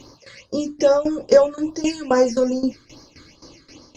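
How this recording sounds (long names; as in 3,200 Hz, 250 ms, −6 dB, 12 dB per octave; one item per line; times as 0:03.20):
tremolo saw down 3.8 Hz, depth 85%
phaser sweep stages 8, 2.4 Hz, lowest notch 770–2,700 Hz
Opus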